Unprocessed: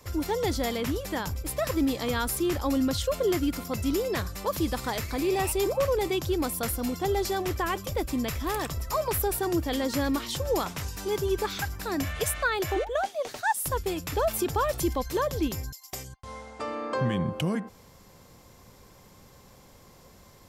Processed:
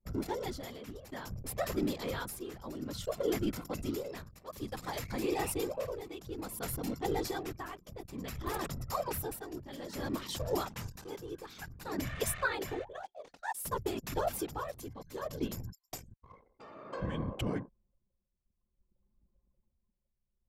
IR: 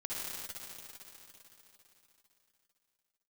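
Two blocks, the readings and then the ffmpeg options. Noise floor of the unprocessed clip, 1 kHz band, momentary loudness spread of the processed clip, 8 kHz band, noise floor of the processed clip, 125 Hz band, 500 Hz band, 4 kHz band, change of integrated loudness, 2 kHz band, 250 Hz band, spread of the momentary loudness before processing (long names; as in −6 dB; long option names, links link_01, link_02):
−54 dBFS, −9.5 dB, 12 LU, −9.0 dB, −82 dBFS, −8.5 dB, −9.5 dB, −9.5 dB, −9.5 dB, −8.5 dB, −9.5 dB, 6 LU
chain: -af "afftfilt=real='hypot(re,im)*cos(2*PI*random(0))':imag='hypot(re,im)*sin(2*PI*random(1))':win_size=512:overlap=0.75,anlmdn=0.0631,tremolo=f=0.57:d=0.74"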